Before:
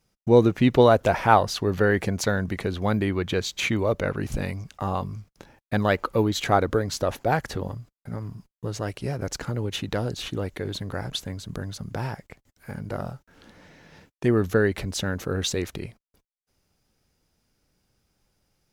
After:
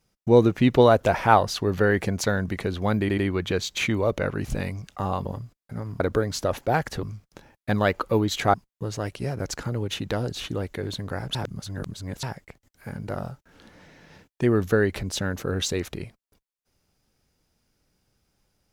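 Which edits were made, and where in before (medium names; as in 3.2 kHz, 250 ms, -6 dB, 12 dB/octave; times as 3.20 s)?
3.00 s: stutter 0.09 s, 3 plays
5.07–6.58 s: swap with 7.61–8.36 s
11.17–12.05 s: reverse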